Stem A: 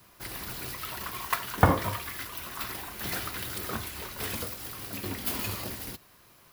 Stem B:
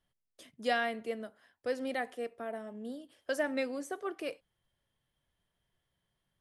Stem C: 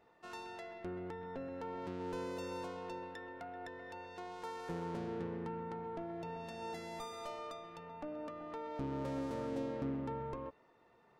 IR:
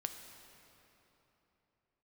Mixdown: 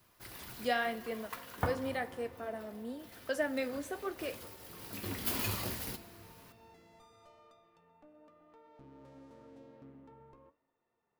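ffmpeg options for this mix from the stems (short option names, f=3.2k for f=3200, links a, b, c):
-filter_complex "[0:a]volume=10dB,afade=t=out:st=1.61:d=0.53:silence=0.281838,afade=t=in:st=3.13:d=0.75:silence=0.298538,afade=t=in:st=4.68:d=0.75:silence=0.354813,asplit=2[a][b];[b]volume=-4dB[c];[1:a]volume=0.5dB,asplit=3[d][e][f];[e]volume=-8dB[g];[2:a]volume=-12.5dB,asplit=2[h][i];[i]volume=-22.5dB[j];[f]apad=whole_len=287577[k];[a][k]sidechaincompress=threshold=-40dB:ratio=8:attack=16:release=964[l];[3:a]atrim=start_sample=2205[m];[c][g][j]amix=inputs=3:normalize=0[n];[n][m]afir=irnorm=-1:irlink=0[o];[l][d][h][o]amix=inputs=4:normalize=0,flanger=delay=7.4:depth=7.1:regen=-66:speed=0.92:shape=triangular"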